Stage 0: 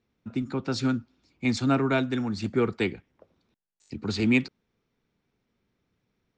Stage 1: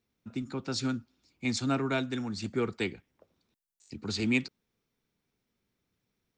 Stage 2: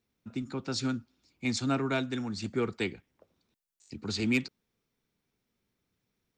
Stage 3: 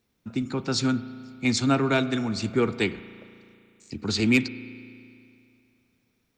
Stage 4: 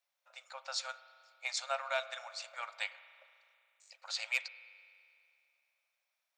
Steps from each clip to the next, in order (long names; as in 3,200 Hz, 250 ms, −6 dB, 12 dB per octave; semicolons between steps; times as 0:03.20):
high-shelf EQ 4,800 Hz +12 dB; level −6 dB
gain into a clipping stage and back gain 19.5 dB
spring reverb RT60 2.5 s, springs 35 ms, chirp 75 ms, DRR 13.5 dB; level +7 dB
linear-phase brick-wall high-pass 520 Hz; level −9 dB